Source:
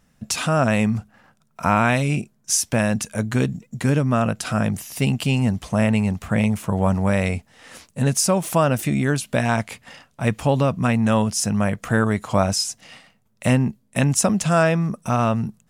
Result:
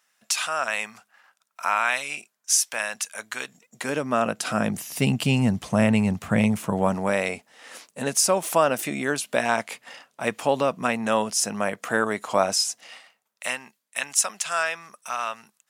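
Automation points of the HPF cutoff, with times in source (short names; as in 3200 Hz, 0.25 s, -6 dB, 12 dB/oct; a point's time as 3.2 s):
3.45 s 1100 Hz
4.01 s 390 Hz
5.22 s 120 Hz
6.45 s 120 Hz
7.24 s 370 Hz
12.68 s 370 Hz
13.61 s 1300 Hz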